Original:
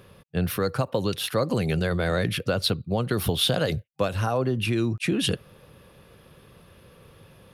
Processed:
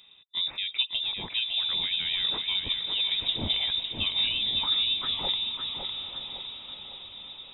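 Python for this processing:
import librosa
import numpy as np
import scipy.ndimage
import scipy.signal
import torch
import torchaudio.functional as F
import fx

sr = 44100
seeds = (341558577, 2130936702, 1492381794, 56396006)

y = fx.graphic_eq_10(x, sr, hz=(125, 250, 500, 1000, 2000), db=(8, -8, -4, 5, -5))
y = fx.echo_diffused(y, sr, ms=945, feedback_pct=56, wet_db=-11.0)
y = fx.freq_invert(y, sr, carrier_hz=3700)
y = fx.echo_feedback(y, sr, ms=557, feedback_pct=44, wet_db=-6)
y = F.gain(torch.from_numpy(y), -6.5).numpy()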